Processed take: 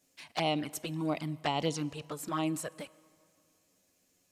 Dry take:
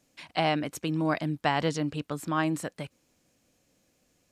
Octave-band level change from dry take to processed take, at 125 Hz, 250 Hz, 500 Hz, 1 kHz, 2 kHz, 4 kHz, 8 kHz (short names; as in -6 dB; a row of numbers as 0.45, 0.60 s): -5.5, -5.0, -4.5, -5.5, -8.0, -2.0, +0.5 dB